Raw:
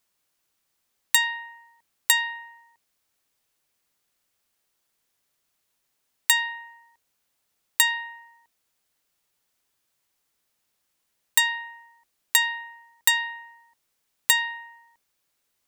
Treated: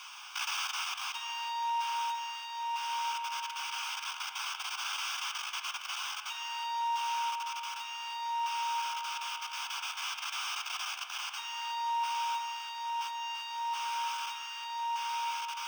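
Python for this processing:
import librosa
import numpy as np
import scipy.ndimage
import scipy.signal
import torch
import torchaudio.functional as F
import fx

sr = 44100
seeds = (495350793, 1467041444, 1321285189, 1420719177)

y = np.sign(x) * np.sqrt(np.mean(np.square(x)))
y = fx.doubler(y, sr, ms=14.0, db=-7.0)
y = y + 10.0 ** (-6.5 / 20.0) * np.pad(y, (int(342 * sr / 1000.0), 0))[:len(y)]
y = fx.level_steps(y, sr, step_db=15)
y = scipy.signal.savgol_filter(y, 15, 4, mode='constant')
y = fx.fixed_phaser(y, sr, hz=2800.0, stages=8)
y = fx.rev_spring(y, sr, rt60_s=3.6, pass_ms=(34, 60), chirp_ms=40, drr_db=6.5)
y = fx.rider(y, sr, range_db=10, speed_s=2.0)
y = scipy.signal.sosfilt(scipy.signal.butter(4, 830.0, 'highpass', fs=sr, output='sos'), y)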